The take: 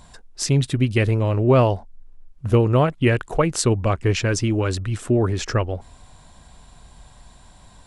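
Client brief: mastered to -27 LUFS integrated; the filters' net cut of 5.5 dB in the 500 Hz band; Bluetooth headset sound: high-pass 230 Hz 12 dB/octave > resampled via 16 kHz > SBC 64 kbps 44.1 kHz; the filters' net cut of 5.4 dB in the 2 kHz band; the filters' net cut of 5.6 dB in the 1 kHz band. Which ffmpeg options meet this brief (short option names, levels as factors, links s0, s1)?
-af "highpass=230,equalizer=f=500:t=o:g=-5.5,equalizer=f=1000:t=o:g=-4,equalizer=f=2000:t=o:g=-5.5,aresample=16000,aresample=44100,volume=0.944" -ar 44100 -c:a sbc -b:a 64k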